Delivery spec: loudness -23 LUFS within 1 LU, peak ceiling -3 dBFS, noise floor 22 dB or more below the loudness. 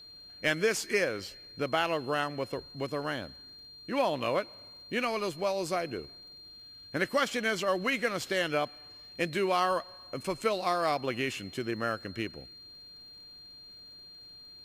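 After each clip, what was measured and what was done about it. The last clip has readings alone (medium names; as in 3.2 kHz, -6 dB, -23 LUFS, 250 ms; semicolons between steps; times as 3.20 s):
tick rate 38 per s; steady tone 4.2 kHz; tone level -48 dBFS; loudness -31.5 LUFS; peak level -15.5 dBFS; loudness target -23.0 LUFS
-> de-click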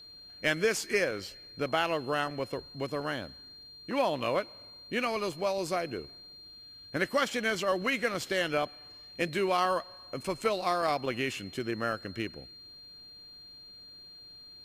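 tick rate 0.14 per s; steady tone 4.2 kHz; tone level -48 dBFS
-> band-stop 4.2 kHz, Q 30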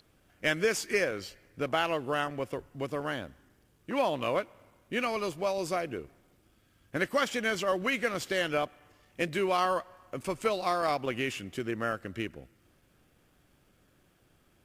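steady tone not found; loudness -31.5 LUFS; peak level -15.5 dBFS; loudness target -23.0 LUFS
-> trim +8.5 dB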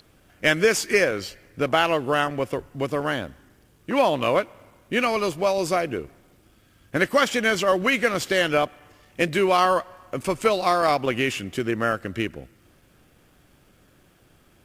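loudness -23.0 LUFS; peak level -7.0 dBFS; noise floor -58 dBFS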